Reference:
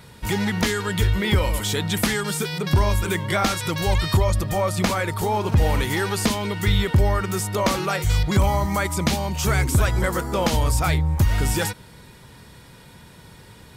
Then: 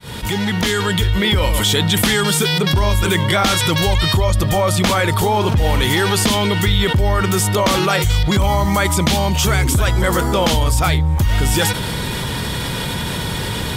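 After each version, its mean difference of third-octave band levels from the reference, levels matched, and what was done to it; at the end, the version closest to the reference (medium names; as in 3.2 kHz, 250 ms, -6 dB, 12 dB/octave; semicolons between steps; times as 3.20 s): 4.5 dB: fade-in on the opening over 1.53 s; peaking EQ 3.3 kHz +6.5 dB 0.33 oct; level flattener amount 70%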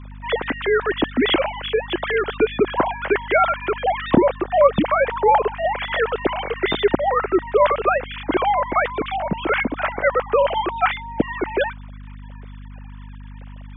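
14.5 dB: formants replaced by sine waves; bass shelf 460 Hz +11 dB; hum 50 Hz, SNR 16 dB; trim -3 dB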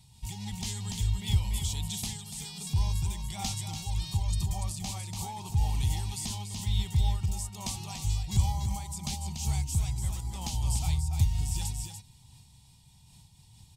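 8.0 dB: FFT filter 120 Hz 0 dB, 550 Hz -27 dB, 800 Hz -5 dB, 1.5 kHz -28 dB, 2.7 kHz -6 dB, 7.9 kHz +3 dB, 13 kHz -6 dB; on a send: delay 289 ms -5 dB; on the sum: random flutter of the level, depth 65%; trim -5 dB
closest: first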